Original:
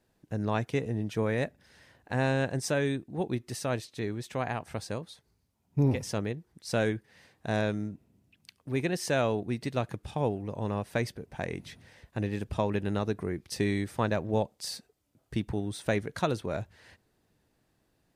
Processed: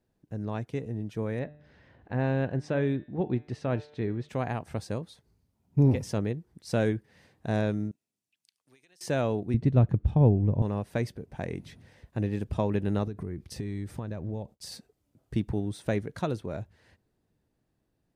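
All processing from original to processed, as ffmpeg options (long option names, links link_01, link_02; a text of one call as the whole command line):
ffmpeg -i in.wav -filter_complex "[0:a]asettb=1/sr,asplit=3[link_01][link_02][link_03];[link_01]atrim=end=1.394[link_04];[link_02]atrim=start=1.39:end=4.29,asetpts=PTS-STARTPTS,afade=type=in:duration=0.004:curve=qsin,afade=type=out:start_time=2.896:duration=0.004:curve=qsin,lowpass=3100,bandreject=frequency=148.7:width_type=h:width=4,bandreject=frequency=297.4:width_type=h:width=4,bandreject=frequency=446.1:width_type=h:width=4,bandreject=frequency=594.8:width_type=h:width=4,bandreject=frequency=743.5:width_type=h:width=4,bandreject=frequency=892.2:width_type=h:width=4,bandreject=frequency=1040.9:width_type=h:width=4,bandreject=frequency=1189.6:width_type=h:width=4,bandreject=frequency=1338.3:width_type=h:width=4,bandreject=frequency=1487:width_type=h:width=4,bandreject=frequency=1635.7:width_type=h:width=4,bandreject=frequency=1784.4:width_type=h:width=4,bandreject=frequency=1933.1:width_type=h:width=4,bandreject=frequency=2081.8:width_type=h:width=4,bandreject=frequency=2230.5:width_type=h:width=4,bandreject=frequency=2379.2:width_type=h:width=4,bandreject=frequency=2527.9:width_type=h:width=4,bandreject=frequency=2676.6:width_type=h:width=4,bandreject=frequency=2825.3:width_type=h:width=4,bandreject=frequency=2974:width_type=h:width=4,bandreject=frequency=3122.7:width_type=h:width=4,bandreject=frequency=3271.4:width_type=h:width=4,bandreject=frequency=3420.1:width_type=h:width=4,bandreject=frequency=3568.8:width_type=h:width=4,bandreject=frequency=3717.5:width_type=h:width=4,bandreject=frequency=3866.2:width_type=h:width=4,bandreject=frequency=4014.9:width_type=h:width=4,acompressor=mode=upward:threshold=-47dB:ratio=2.5:attack=3.2:release=140:knee=2.83:detection=peak[link_05];[link_03]atrim=start=4.286[link_06];[link_04][link_05]acrossfade=duration=0.004:curve1=hsin:curve2=qsin[link_07];[link_07][link_06]acrossfade=duration=0.004:curve1=qsin:curve2=hsin,asettb=1/sr,asplit=3[link_08][link_09][link_10];[link_08]atrim=end=7.914[link_11];[link_09]atrim=start=7.91:end=9.01,asetpts=PTS-STARTPTS,afade=type=in:duration=0.004:curve=qsin,afade=type=out:start_time=1.096:duration=0.004:curve=qsin,bandpass=frequency=7500:width_type=q:width=0.75,acompressor=threshold=-54dB:ratio=16:attack=3.2:release=140:knee=1:detection=peak[link_12];[link_10]atrim=start=9.006[link_13];[link_11][link_12]acrossfade=duration=0.004:curve1=hsin:curve2=qsin[link_14];[link_14][link_13]acrossfade=duration=0.004:curve1=qsin:curve2=hsin,asettb=1/sr,asplit=3[link_15][link_16][link_17];[link_15]atrim=end=9.544[link_18];[link_16]atrim=start=9.54:end=10.62,asetpts=PTS-STARTPTS,afade=type=in:duration=0.004:curve=qsin,afade=type=out:start_time=1.076:duration=0.004:curve=qsin,aemphasis=mode=reproduction:type=riaa,bandreject=frequency=4800:width=17[link_19];[link_17]atrim=start=10.616[link_20];[link_18][link_19]acrossfade=duration=0.004:curve1=hsin:curve2=qsin[link_21];[link_21][link_20]acrossfade=duration=0.004:curve1=qsin:curve2=hsin,asettb=1/sr,asplit=3[link_22][link_23][link_24];[link_22]atrim=end=13.074[link_25];[link_23]atrim=start=13.07:end=14.72,asetpts=PTS-STARTPTS,afade=type=in:duration=0.004:curve=qsin,afade=type=out:start_time=1.646:duration=0.004:curve=qsin,agate=range=-33dB:threshold=-56dB:ratio=3:release=100:detection=peak,lowshelf=frequency=130:gain=9,acompressor=threshold=-34dB:ratio=6:attack=3.2:release=140:knee=1:detection=peak[link_26];[link_24]atrim=start=14.716[link_27];[link_25][link_26]acrossfade=duration=0.004:curve1=hsin:curve2=qsin[link_28];[link_28][link_27]acrossfade=duration=0.004:curve1=qsin:curve2=hsin,tiltshelf=frequency=630:gain=4,dynaudnorm=framelen=140:gausssize=31:maxgain=6.5dB,volume=-6dB" out.wav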